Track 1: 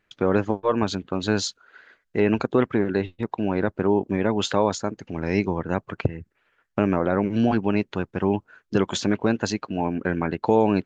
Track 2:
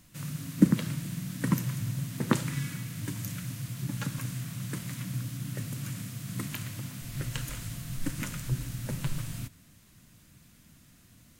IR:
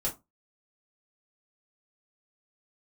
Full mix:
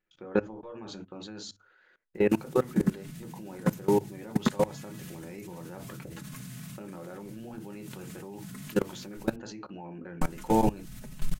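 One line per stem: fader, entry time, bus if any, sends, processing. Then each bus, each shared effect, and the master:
-8.5 dB, 0.00 s, send -4 dB, dry
0.0 dB, 2.15 s, muted 9.36–10.21, no send, low shelf 61 Hz +9 dB; comb 4.7 ms, depth 74%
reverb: on, RT60 0.20 s, pre-delay 3 ms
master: level quantiser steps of 21 dB; notches 50/100 Hz

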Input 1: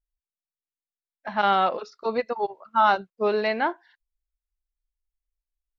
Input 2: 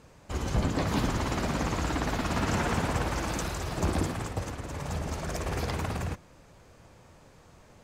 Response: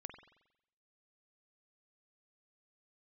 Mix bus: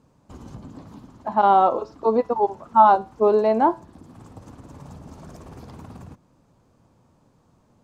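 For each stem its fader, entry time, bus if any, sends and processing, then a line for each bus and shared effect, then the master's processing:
-3.5 dB, 0.00 s, no send, band shelf 550 Hz +10.5 dB 2.4 oct; resonator 110 Hz, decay 0.33 s, harmonics all, mix 50%
-10.5 dB, 0.00 s, no send, compressor 6:1, threshold -32 dBFS, peak gain reduction 10.5 dB; auto duck -9 dB, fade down 0.60 s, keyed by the first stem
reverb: off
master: graphic EQ 125/250/1000/2000 Hz +6/+10/+6/-6 dB

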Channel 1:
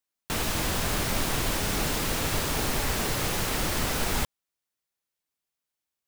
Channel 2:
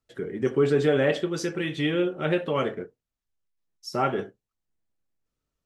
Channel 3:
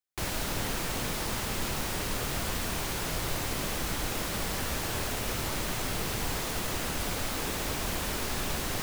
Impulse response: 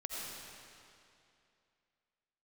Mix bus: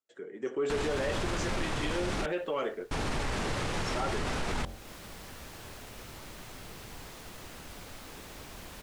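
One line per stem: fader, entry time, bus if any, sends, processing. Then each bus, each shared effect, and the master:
+1.0 dB, 0.40 s, muted 2.26–2.91, no send, LPF 9600 Hz 24 dB/oct; de-hum 45.45 Hz, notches 18
-8.5 dB, 0.00 s, no send, HPF 360 Hz 12 dB/oct; AGC gain up to 7 dB; synth low-pass 7400 Hz, resonance Q 4.8
-13.5 dB, 0.70 s, no send, high shelf 3500 Hz +8.5 dB; auto duck -16 dB, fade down 1.80 s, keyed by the second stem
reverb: off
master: high shelf 4500 Hz -11.5 dB; soft clip -16.5 dBFS, distortion -22 dB; limiter -24 dBFS, peak gain reduction 6.5 dB

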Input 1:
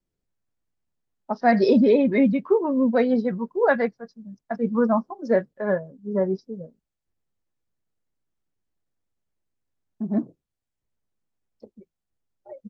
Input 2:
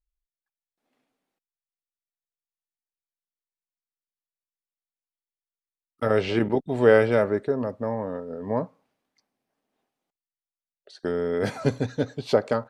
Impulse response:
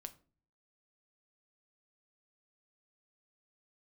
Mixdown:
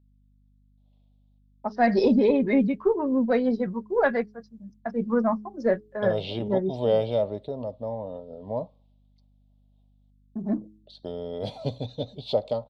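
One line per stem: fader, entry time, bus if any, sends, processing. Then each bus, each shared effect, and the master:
-2.5 dB, 0.35 s, no send, expander -47 dBFS; de-hum 106 Hz, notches 4; added harmonics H 2 -20 dB, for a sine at -5.5 dBFS
-3.5 dB, 0.00 s, no send, EQ curve 110 Hz 0 dB, 400 Hz -8 dB, 610 Hz +4 dB, 990 Hz -5 dB, 1600 Hz -26 dB, 3600 Hz +9 dB, 6200 Hz -13 dB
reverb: off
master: hum 50 Hz, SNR 34 dB

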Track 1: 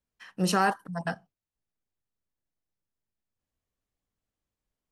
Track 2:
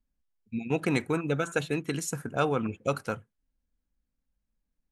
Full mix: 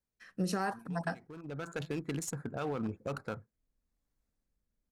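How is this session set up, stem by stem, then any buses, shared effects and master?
+0.5 dB, 0.00 s, no send, bell 3000 Hz -9 dB 0.31 oct; rotary speaker horn 0.9 Hz
-2.5 dB, 0.20 s, no send, Wiener smoothing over 15 samples; limiter -22.5 dBFS, peak gain reduction 10 dB; one-sided clip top -30.5 dBFS, bottom -24 dBFS; auto duck -22 dB, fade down 1.45 s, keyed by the first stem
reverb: off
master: compressor 10:1, threshold -29 dBFS, peak gain reduction 9 dB

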